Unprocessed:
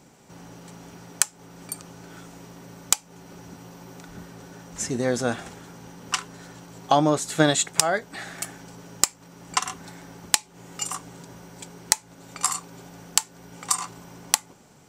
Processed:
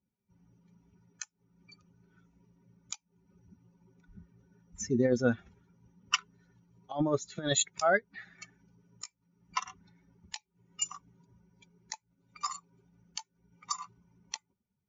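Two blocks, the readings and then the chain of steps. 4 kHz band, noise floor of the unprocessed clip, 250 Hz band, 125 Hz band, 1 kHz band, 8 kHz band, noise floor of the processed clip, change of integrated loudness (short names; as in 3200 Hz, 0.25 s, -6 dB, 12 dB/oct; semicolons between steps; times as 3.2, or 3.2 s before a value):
-10.0 dB, -53 dBFS, -6.0 dB, -7.0 dB, -10.0 dB, -13.5 dB, -83 dBFS, -8.5 dB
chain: per-bin expansion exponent 2; negative-ratio compressor -26 dBFS, ratio -0.5; MP3 80 kbps 16000 Hz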